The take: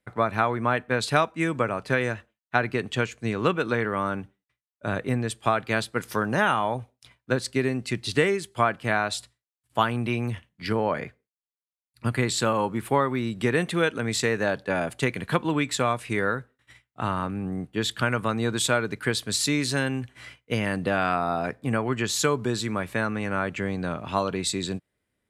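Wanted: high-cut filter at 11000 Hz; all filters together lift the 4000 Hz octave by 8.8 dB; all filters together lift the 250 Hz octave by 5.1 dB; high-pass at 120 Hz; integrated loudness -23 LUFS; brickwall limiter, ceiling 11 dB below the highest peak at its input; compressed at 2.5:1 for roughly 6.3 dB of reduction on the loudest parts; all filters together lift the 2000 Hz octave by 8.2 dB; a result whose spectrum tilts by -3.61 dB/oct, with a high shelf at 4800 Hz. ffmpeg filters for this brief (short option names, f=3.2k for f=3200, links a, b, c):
-af "highpass=120,lowpass=11k,equalizer=f=250:t=o:g=6.5,equalizer=f=2k:t=o:g=8.5,equalizer=f=4k:t=o:g=4.5,highshelf=f=4.8k:g=7.5,acompressor=threshold=-22dB:ratio=2.5,volume=4.5dB,alimiter=limit=-11.5dB:level=0:latency=1"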